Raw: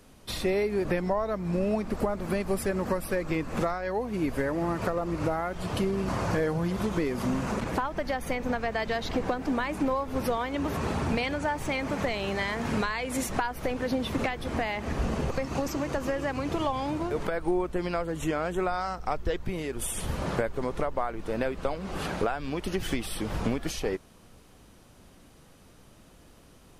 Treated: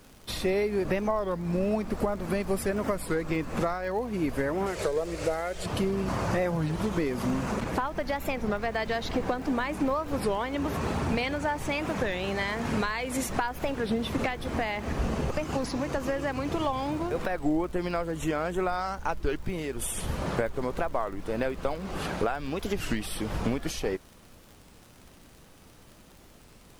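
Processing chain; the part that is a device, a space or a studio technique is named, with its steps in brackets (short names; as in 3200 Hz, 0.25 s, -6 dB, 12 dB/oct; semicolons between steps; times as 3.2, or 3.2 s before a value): warped LP (record warp 33 1/3 rpm, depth 250 cents; crackle 69/s -41 dBFS; pink noise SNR 31 dB); 4.66–5.66 graphic EQ 125/250/500/1000/2000/4000/8000 Hz -6/-11/+8/-9/+3/+4/+9 dB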